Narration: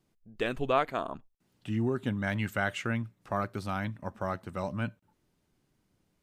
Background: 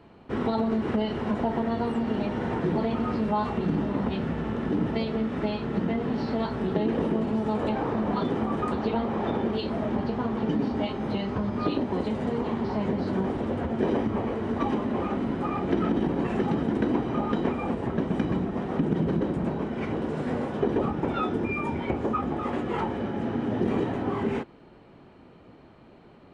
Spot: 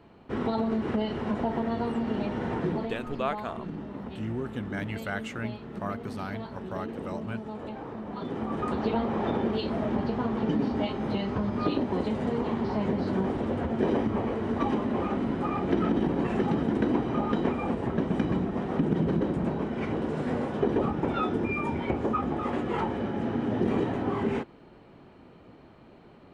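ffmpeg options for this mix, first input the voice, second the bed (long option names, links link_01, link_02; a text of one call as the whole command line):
ffmpeg -i stem1.wav -i stem2.wav -filter_complex "[0:a]adelay=2500,volume=-3.5dB[link_01];[1:a]volume=8.5dB,afade=type=out:start_time=2.65:duration=0.33:silence=0.354813,afade=type=in:start_time=8.11:duration=0.73:silence=0.298538[link_02];[link_01][link_02]amix=inputs=2:normalize=0" out.wav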